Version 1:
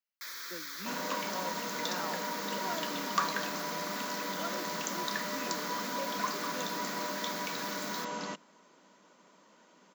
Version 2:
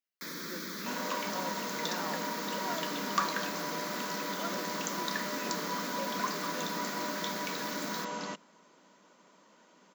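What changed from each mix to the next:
first sound: remove high-pass 1.1 kHz 12 dB/octave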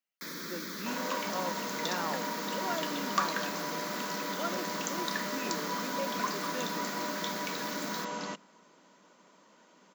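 speech +4.5 dB; second sound: send on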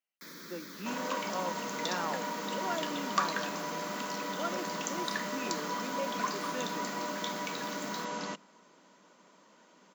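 first sound -7.0 dB

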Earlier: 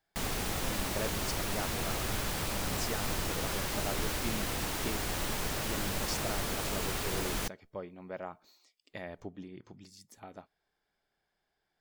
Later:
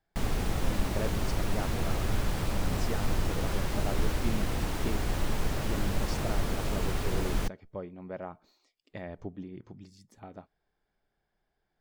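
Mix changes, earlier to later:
speech: add treble shelf 9 kHz -5 dB; master: add tilt EQ -2 dB/octave

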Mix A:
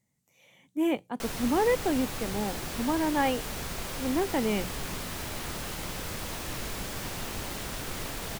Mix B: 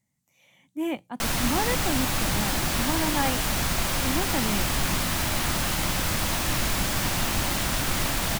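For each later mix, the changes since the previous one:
background +10.5 dB; master: add peaking EQ 440 Hz -9.5 dB 0.45 oct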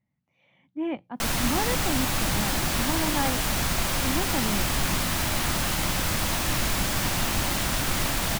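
speech: add distance through air 340 m

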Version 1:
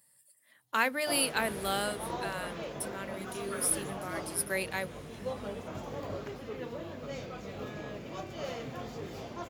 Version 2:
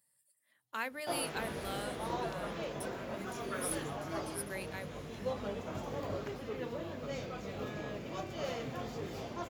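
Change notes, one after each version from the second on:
speech -10.0 dB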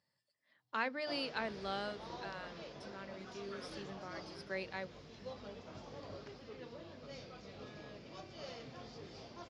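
speech: remove pre-emphasis filter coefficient 0.8; master: add four-pole ladder low-pass 5.6 kHz, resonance 60%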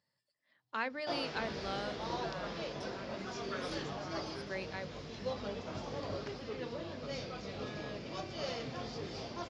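background +9.0 dB

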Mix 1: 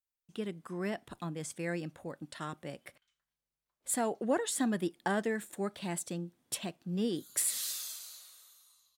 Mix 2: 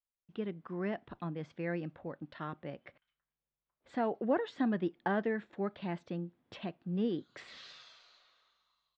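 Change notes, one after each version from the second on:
master: add Gaussian low-pass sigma 2.7 samples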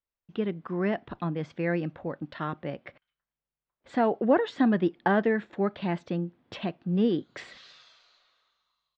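speech +8.5 dB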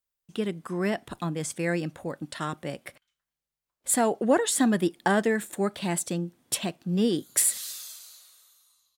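master: remove Gaussian low-pass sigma 2.7 samples

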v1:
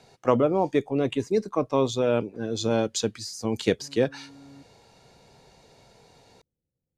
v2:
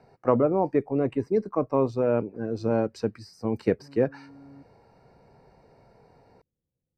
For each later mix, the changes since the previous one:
speech: remove low-pass 10 kHz; master: add boxcar filter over 13 samples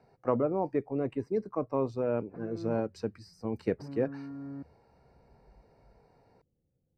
speech -6.5 dB; background +7.5 dB

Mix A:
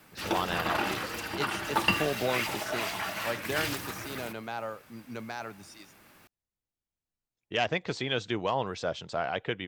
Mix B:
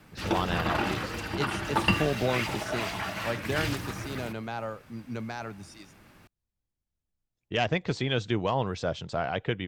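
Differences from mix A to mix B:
background: add treble shelf 11 kHz -11.5 dB; master: add bass shelf 200 Hz +11.5 dB

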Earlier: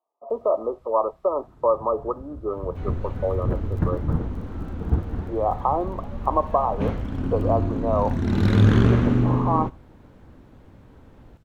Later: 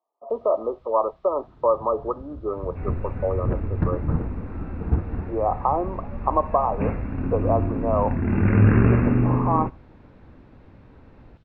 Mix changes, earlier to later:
second sound: add brick-wall FIR low-pass 2.8 kHz; master: add resonant low-pass 3.9 kHz, resonance Q 1.5

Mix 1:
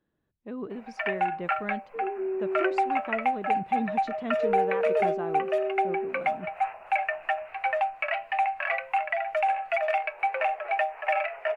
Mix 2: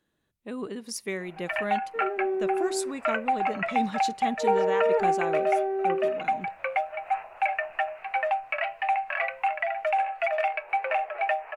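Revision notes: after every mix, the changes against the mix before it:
speech: remove tape spacing loss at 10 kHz 36 dB; first sound: entry +0.50 s; second sound: remove boxcar filter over 42 samples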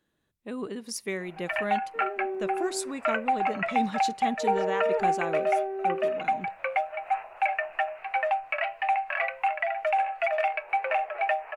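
second sound -5.0 dB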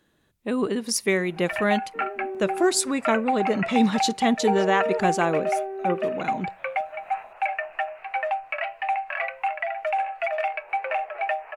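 speech +10.0 dB

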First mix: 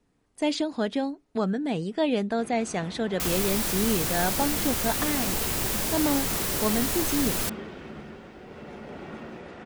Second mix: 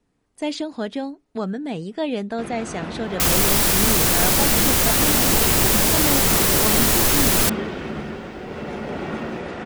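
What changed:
first sound +11.5 dB; second sound +10.5 dB

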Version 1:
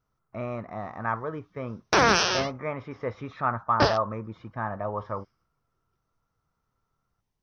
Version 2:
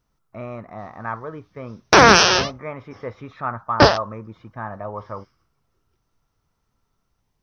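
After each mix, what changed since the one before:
background +9.5 dB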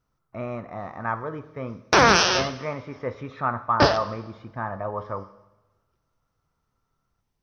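background -6.5 dB; reverb: on, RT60 1.1 s

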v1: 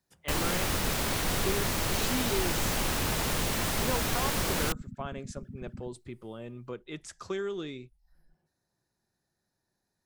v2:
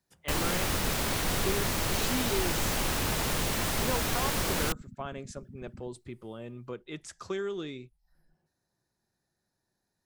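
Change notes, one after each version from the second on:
second sound -5.0 dB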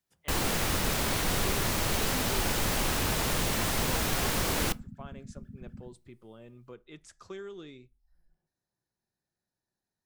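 speech -9.0 dB; reverb: on, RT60 0.35 s

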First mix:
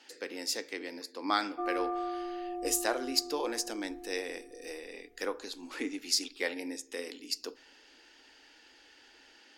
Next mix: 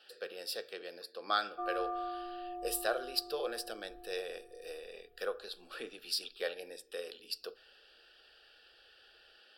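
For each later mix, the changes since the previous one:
master: add static phaser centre 1.4 kHz, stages 8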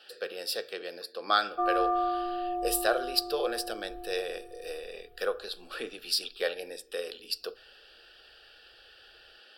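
speech +6.5 dB; background +10.5 dB

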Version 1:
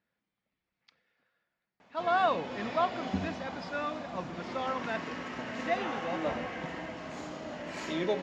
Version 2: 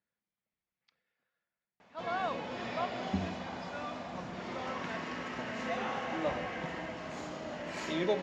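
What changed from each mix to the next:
speech -8.5 dB; master: add peaking EQ 280 Hz -4.5 dB 0.22 oct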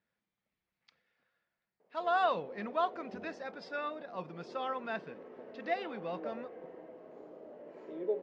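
speech +6.0 dB; background: add band-pass filter 440 Hz, Q 4

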